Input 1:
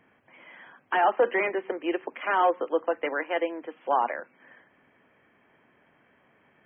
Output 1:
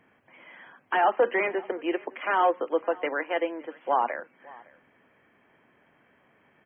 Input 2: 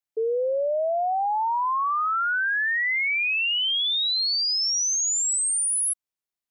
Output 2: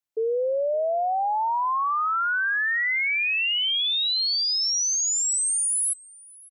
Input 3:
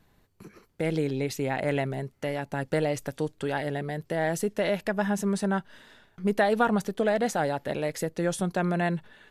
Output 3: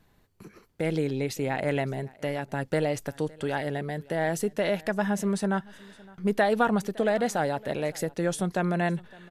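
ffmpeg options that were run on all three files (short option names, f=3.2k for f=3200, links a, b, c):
-af "aecho=1:1:562:0.0668"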